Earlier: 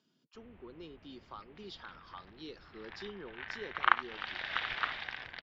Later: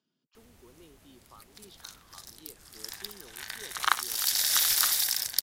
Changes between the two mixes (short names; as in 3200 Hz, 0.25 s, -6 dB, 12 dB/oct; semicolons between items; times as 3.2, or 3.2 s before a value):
speech -6.5 dB; background: remove steep low-pass 2900 Hz 36 dB/oct